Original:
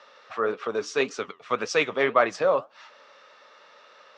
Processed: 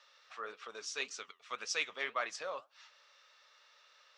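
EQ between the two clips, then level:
first-order pre-emphasis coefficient 0.97
high-shelf EQ 5,200 Hz −5 dB
+1.0 dB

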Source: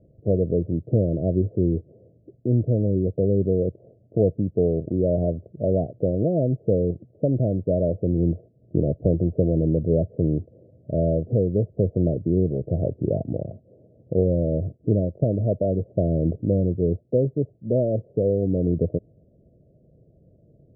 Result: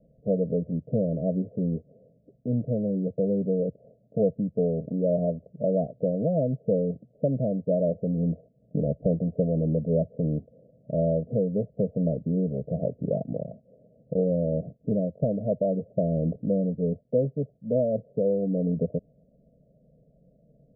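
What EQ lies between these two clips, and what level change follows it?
Chebyshev low-pass filter 730 Hz, order 5
phaser with its sweep stopped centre 350 Hz, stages 6
0.0 dB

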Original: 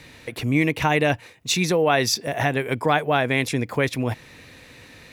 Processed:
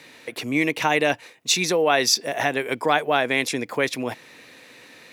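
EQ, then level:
high-pass filter 260 Hz 12 dB per octave
dynamic equaliser 5,600 Hz, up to +4 dB, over −41 dBFS, Q 0.82
0.0 dB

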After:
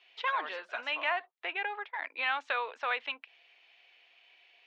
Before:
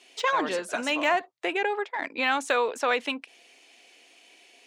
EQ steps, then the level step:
high-pass filter 850 Hz 12 dB per octave
low-pass filter 3,600 Hz 24 dB per octave
−4.5 dB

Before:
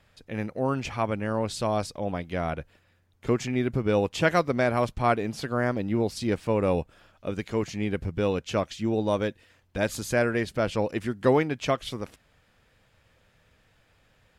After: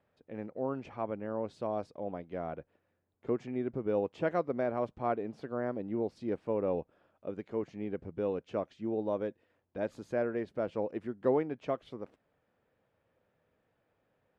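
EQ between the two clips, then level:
resonant band-pass 440 Hz, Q 0.76
−6.0 dB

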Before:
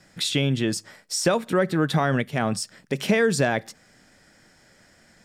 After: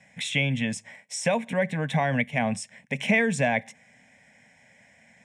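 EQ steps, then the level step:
loudspeaker in its box 110–8,900 Hz, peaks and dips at 240 Hz +7 dB, 2,200 Hz +8 dB, 5,100 Hz +7 dB
phaser with its sweep stopped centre 1,300 Hz, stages 6
0.0 dB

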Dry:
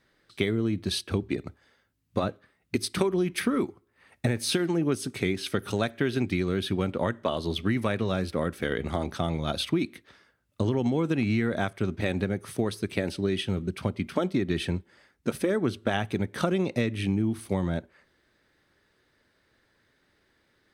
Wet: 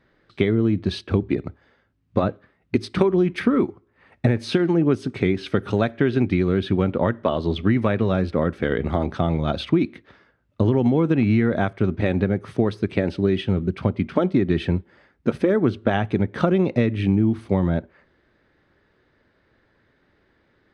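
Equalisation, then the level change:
head-to-tape spacing loss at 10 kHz 26 dB
+8.0 dB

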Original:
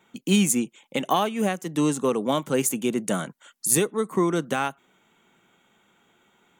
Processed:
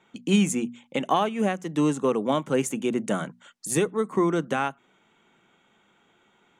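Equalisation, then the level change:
Bessel low-pass filter 5,800 Hz, order 2
mains-hum notches 60/120/180/240 Hz
dynamic equaliser 4,400 Hz, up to −6 dB, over −49 dBFS, Q 1.7
0.0 dB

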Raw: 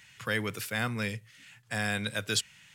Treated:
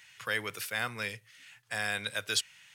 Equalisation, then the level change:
parametric band 220 Hz −5 dB 1.1 octaves
low-shelf EQ 300 Hz −11 dB
notch filter 7,400 Hz, Q 15
0.0 dB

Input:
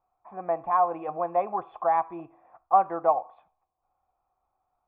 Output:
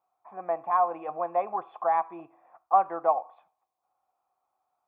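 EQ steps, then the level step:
high-pass filter 130 Hz 12 dB per octave
low-shelf EQ 330 Hz −8.5 dB
0.0 dB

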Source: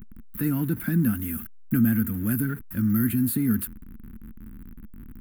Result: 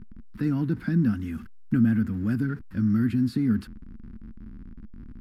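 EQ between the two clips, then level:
low-pass with resonance 5,200 Hz, resonance Q 4.7
high-shelf EQ 2,500 Hz −11.5 dB
0.0 dB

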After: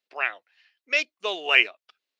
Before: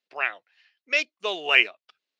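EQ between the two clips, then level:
parametric band 140 Hz −9.5 dB 0.86 octaves
0.0 dB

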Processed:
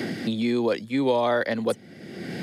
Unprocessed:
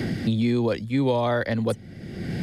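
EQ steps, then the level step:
high-pass filter 250 Hz 12 dB per octave
+1.5 dB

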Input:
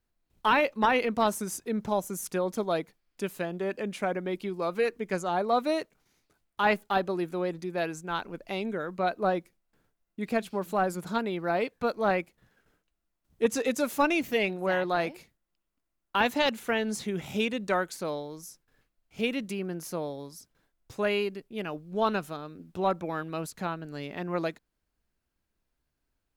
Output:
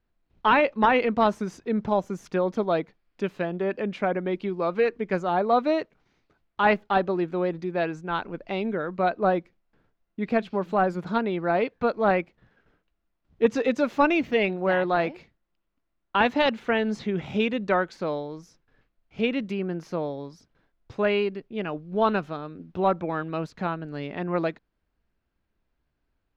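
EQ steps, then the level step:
high-frequency loss of the air 220 metres
+5.0 dB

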